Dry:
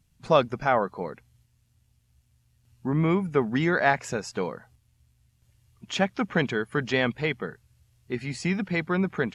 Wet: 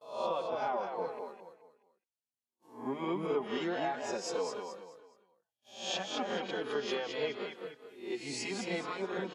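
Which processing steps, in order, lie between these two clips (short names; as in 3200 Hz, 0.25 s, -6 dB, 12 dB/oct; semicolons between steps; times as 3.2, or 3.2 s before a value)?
spectral swells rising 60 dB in 0.52 s; gate -55 dBFS, range -25 dB; HPF 400 Hz 12 dB/oct; treble ducked by the level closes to 2900 Hz, closed at -19 dBFS; compressor, threshold -27 dBFS, peak gain reduction 13 dB; band shelf 1700 Hz -9 dB 1.1 oct; feedback echo 0.212 s, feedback 34%, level -5 dB; endless flanger 4.2 ms -1.8 Hz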